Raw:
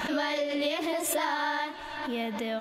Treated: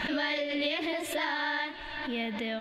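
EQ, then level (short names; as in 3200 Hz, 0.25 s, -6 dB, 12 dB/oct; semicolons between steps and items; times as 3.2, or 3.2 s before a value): tilt -2 dB/oct; band shelf 2800 Hz +10 dB; -5.0 dB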